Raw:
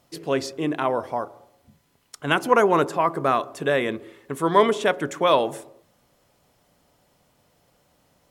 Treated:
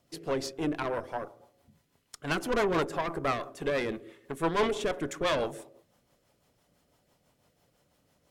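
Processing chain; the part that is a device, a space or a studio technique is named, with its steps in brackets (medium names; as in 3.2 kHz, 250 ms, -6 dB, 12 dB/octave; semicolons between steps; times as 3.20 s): overdriven rotary cabinet (valve stage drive 20 dB, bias 0.7; rotary cabinet horn 6 Hz)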